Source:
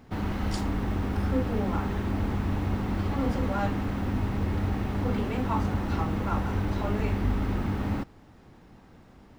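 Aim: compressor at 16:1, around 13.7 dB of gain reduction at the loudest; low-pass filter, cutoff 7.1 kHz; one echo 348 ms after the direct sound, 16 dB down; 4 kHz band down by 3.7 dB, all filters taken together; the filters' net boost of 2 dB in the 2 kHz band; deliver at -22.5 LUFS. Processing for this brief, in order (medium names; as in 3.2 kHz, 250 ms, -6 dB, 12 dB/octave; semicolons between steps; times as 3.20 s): low-pass 7.1 kHz; peaking EQ 2 kHz +4 dB; peaking EQ 4 kHz -6.5 dB; compression 16:1, threshold -35 dBFS; delay 348 ms -16 dB; trim +18 dB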